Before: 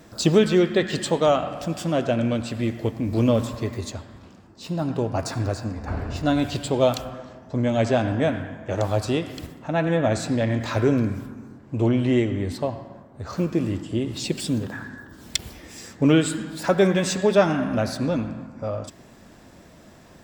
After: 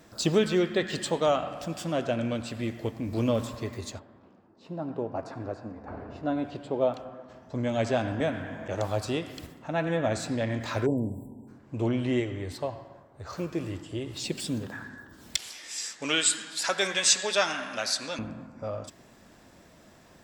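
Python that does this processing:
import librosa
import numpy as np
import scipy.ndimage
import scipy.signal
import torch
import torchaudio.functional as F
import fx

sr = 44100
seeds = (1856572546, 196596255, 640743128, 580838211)

y = fx.bandpass_q(x, sr, hz=440.0, q=0.57, at=(3.98, 7.28), fade=0.02)
y = fx.band_squash(y, sr, depth_pct=70, at=(8.2, 8.68))
y = fx.brickwall_bandstop(y, sr, low_hz=1000.0, high_hz=7400.0, at=(10.85, 11.47), fade=0.02)
y = fx.peak_eq(y, sr, hz=220.0, db=-11.5, octaves=0.42, at=(12.2, 14.25))
y = fx.weighting(y, sr, curve='ITU-R 468', at=(15.37, 18.19))
y = fx.low_shelf(y, sr, hz=440.0, db=-4.0)
y = y * 10.0 ** (-4.0 / 20.0)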